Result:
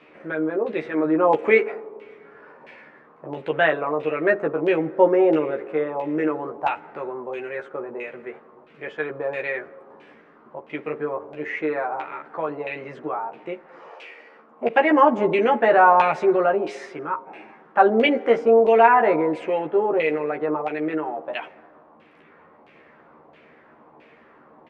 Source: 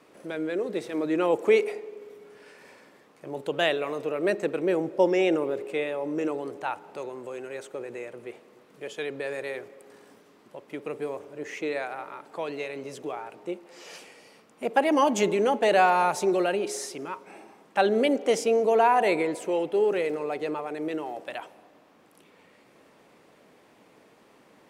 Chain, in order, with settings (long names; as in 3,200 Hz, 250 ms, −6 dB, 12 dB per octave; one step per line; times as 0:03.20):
0:13.88–0:14.69: high-pass filter 400 Hz → 150 Hz 24 dB per octave
auto-filter low-pass saw down 1.5 Hz 870–2,800 Hz
double-tracking delay 13 ms −3 dB
level +2 dB